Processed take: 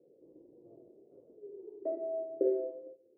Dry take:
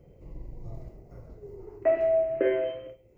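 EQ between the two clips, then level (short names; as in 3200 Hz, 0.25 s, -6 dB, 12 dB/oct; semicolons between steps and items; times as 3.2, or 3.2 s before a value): Butterworth band-pass 390 Hz, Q 1.6; air absorption 200 m; -2.5 dB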